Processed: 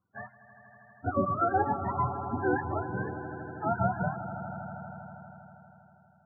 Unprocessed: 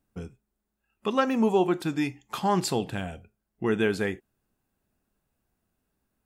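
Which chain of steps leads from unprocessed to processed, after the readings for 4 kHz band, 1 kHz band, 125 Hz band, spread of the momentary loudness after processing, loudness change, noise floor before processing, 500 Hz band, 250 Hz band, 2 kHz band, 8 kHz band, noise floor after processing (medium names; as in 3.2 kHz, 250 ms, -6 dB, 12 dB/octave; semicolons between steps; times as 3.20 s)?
under -40 dB, +2.0 dB, +1.0 dB, 18 LU, -4.5 dB, -81 dBFS, -5.5 dB, -7.0 dB, -2.5 dB, under -40 dB, -61 dBFS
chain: spectrum inverted on a logarithmic axis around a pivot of 550 Hz; steep low-pass 1.8 kHz 48 dB/octave; in parallel at -1 dB: compression, threshold -39 dBFS, peak gain reduction 18 dB; on the sum: echo with a slow build-up 80 ms, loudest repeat 5, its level -15 dB; loudest bins only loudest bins 32; trim -3.5 dB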